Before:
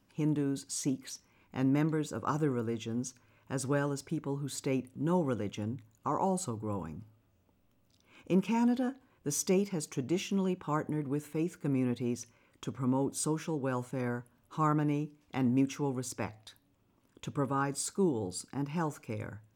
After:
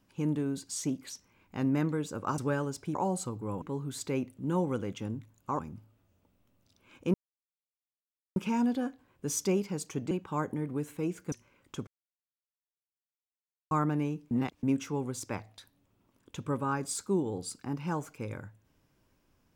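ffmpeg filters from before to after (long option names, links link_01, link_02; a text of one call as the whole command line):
ffmpeg -i in.wav -filter_complex "[0:a]asplit=12[link_01][link_02][link_03][link_04][link_05][link_06][link_07][link_08][link_09][link_10][link_11][link_12];[link_01]atrim=end=2.382[link_13];[link_02]atrim=start=3.618:end=4.192[link_14];[link_03]atrim=start=6.158:end=6.832[link_15];[link_04]atrim=start=4.188:end=6.162[link_16];[link_05]atrim=start=6.828:end=8.38,asetpts=PTS-STARTPTS,afade=type=out:start_time=1.548:duration=0.004:curve=hsin,apad=pad_dur=1.22[link_17];[link_06]atrim=start=8.38:end=10.132,asetpts=PTS-STARTPTS,afade=type=in:duration=0.004:curve=hsin[link_18];[link_07]atrim=start=10.468:end=11.682[link_19];[link_08]atrim=start=12.208:end=12.76,asetpts=PTS-STARTPTS,afade=type=out:start_time=0.548:duration=0.004:curve=hsin[link_20];[link_09]atrim=start=12.76:end=14.6,asetpts=PTS-STARTPTS,volume=0[link_21];[link_10]atrim=start=14.6:end=15.202,asetpts=PTS-STARTPTS,afade=type=in:duration=0.004:curve=hsin[link_22];[link_11]atrim=start=15.198:end=15.522,asetpts=PTS-STARTPTS,areverse[link_23];[link_12]atrim=start=15.518[link_24];[link_13][link_14]acrossfade=duration=0.004:curve1=hsin:curve2=hsin[link_25];[link_25][link_15]acrossfade=duration=0.004:curve1=hsin:curve2=hsin[link_26];[link_26][link_16]acrossfade=duration=0.004:curve1=hsin:curve2=hsin[link_27];[link_17][link_18]concat=n=2:v=0:a=1[link_28];[link_27][link_28]acrossfade=duration=0.004:curve1=hsin:curve2=hsin[link_29];[link_29][link_19]acrossfade=duration=0.004:curve1=hsin:curve2=hsin[link_30];[link_20][link_21][link_22]concat=n=3:v=0:a=1[link_31];[link_30][link_31]acrossfade=duration=0.004:curve1=hsin:curve2=hsin[link_32];[link_32][link_23]acrossfade=duration=0.004:curve1=hsin:curve2=hsin[link_33];[link_33][link_24]acrossfade=duration=0.004:curve1=hsin:curve2=hsin" out.wav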